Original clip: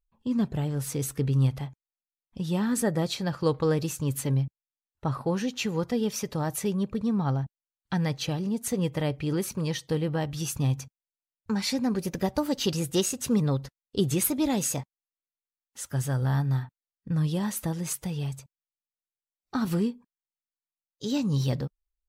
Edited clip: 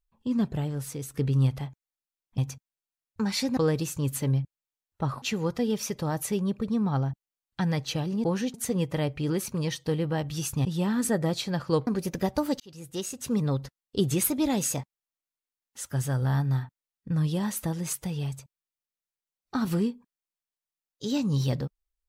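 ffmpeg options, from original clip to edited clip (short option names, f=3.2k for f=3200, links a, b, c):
-filter_complex "[0:a]asplit=10[a][b][c][d][e][f][g][h][i][j];[a]atrim=end=1.14,asetpts=PTS-STARTPTS,afade=t=out:st=0.52:d=0.62:silence=0.354813[k];[b]atrim=start=1.14:end=2.382,asetpts=PTS-STARTPTS,afade=t=in:d=0.004:c=hsin:silence=0.354813[l];[c]atrim=start=10.678:end=11.872[m];[d]atrim=start=3.598:end=5.252[n];[e]atrim=start=5.548:end=8.572[o];[f]atrim=start=5.248:end=5.552[p];[g]atrim=start=8.568:end=10.682[q];[h]atrim=start=2.378:end=3.602[r];[i]atrim=start=11.868:end=12.6,asetpts=PTS-STARTPTS,afade=t=out:st=0.728:d=0.004:c=hsin[s];[j]atrim=start=12.6,asetpts=PTS-STARTPTS,afade=t=in:d=1.02[t];[k][l]concat=n=2:v=0:a=1[u];[u][m]acrossfade=d=0.004:c1=hsin:c2=hsin[v];[v][n]acrossfade=d=0.004:c1=hsin:c2=hsin[w];[w][o]acrossfade=d=0.004:c1=hsin:c2=hsin[x];[x][p]acrossfade=d=0.004:c1=hsin:c2=hsin[y];[y][q]acrossfade=d=0.004:c1=hsin:c2=hsin[z];[z][r]acrossfade=d=0.004:c1=hsin:c2=hsin[aa];[s][t]concat=n=2:v=0:a=1[ab];[aa][ab]acrossfade=d=0.004:c1=hsin:c2=hsin"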